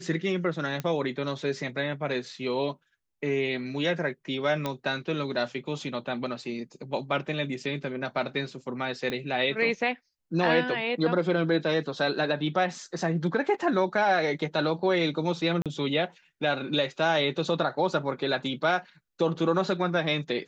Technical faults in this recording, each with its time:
0:00.80: click −17 dBFS
0:04.66: click −15 dBFS
0:09.10: click −18 dBFS
0:15.62–0:15.66: drop-out 37 ms

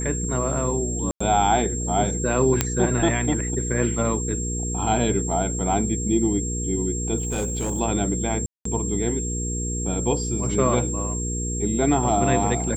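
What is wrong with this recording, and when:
mains hum 60 Hz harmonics 8 −28 dBFS
whistle 7,500 Hz −29 dBFS
0:01.11–0:01.21: drop-out 95 ms
0:02.61: click −3 dBFS
0:07.18–0:07.81: clipping −21 dBFS
0:08.46–0:08.65: drop-out 194 ms

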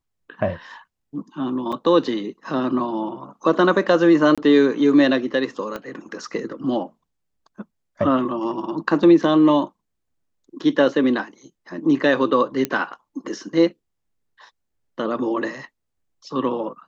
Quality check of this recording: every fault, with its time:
0:01.72–0:01.73: drop-out 5.5 ms
0:04.35–0:04.38: drop-out 26 ms
0:05.76: click −16 dBFS
0:12.65: click −8 dBFS

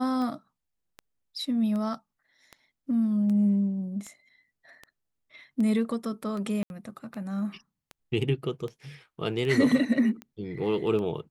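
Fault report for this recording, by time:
scratch tick 78 rpm −25 dBFS
0:06.63–0:06.70: drop-out 71 ms

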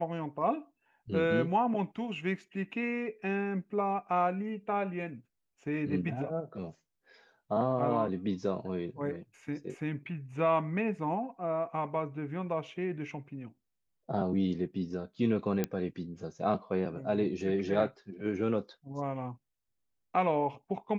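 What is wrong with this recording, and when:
0:15.64: click −16 dBFS

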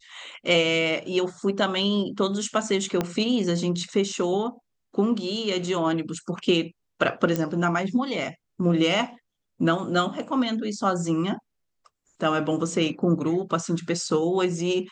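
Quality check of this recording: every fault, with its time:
0:03.01: click −11 dBFS
0:07.36: click −12 dBFS

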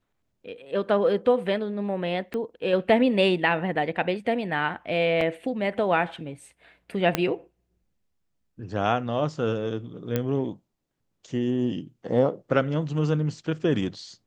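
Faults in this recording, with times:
0:02.34: click −20 dBFS
0:05.21: drop-out 2.9 ms
0:07.15: click −7 dBFS
0:10.16: click −12 dBFS

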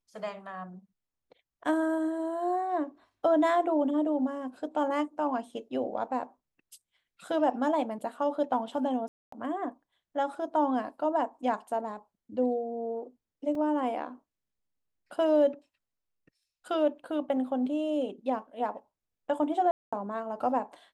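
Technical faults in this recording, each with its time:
0:09.08–0:09.32: drop-out 244 ms
0:13.55: drop-out 2.6 ms
0:19.71–0:19.93: drop-out 215 ms

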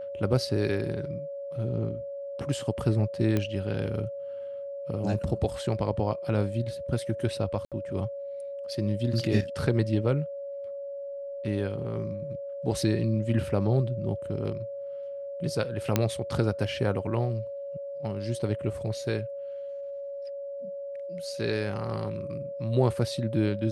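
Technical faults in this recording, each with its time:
whistle 560 Hz −34 dBFS
0:03.37: click −14 dBFS
0:07.65–0:07.72: drop-out 67 ms
0:15.96: click −8 dBFS

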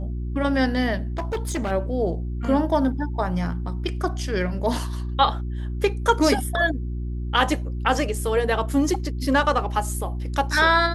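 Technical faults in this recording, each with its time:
mains hum 60 Hz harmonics 6 −28 dBFS
0:01.03–0:01.72: clipping −22 dBFS

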